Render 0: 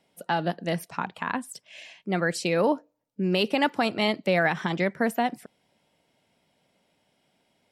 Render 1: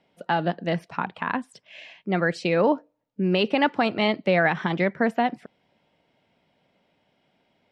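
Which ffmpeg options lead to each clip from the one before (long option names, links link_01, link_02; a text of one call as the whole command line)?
ffmpeg -i in.wav -af "lowpass=3500,volume=2.5dB" out.wav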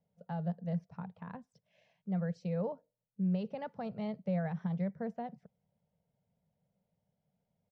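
ffmpeg -i in.wav -af "firequalizer=gain_entry='entry(180,0);entry(320,-29);entry(450,-9);entry(1100,-19);entry(2700,-26);entry(6100,-15);entry(8900,-30)':delay=0.05:min_phase=1,volume=-5dB" out.wav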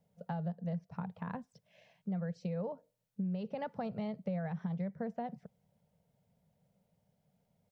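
ffmpeg -i in.wav -af "acompressor=threshold=-41dB:ratio=5,volume=6dB" out.wav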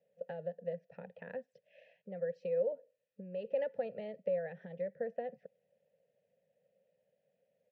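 ffmpeg -i in.wav -filter_complex "[0:a]asplit=3[link_01][link_02][link_03];[link_01]bandpass=frequency=530:width_type=q:width=8,volume=0dB[link_04];[link_02]bandpass=frequency=1840:width_type=q:width=8,volume=-6dB[link_05];[link_03]bandpass=frequency=2480:width_type=q:width=8,volume=-9dB[link_06];[link_04][link_05][link_06]amix=inputs=3:normalize=0,volume=11dB" out.wav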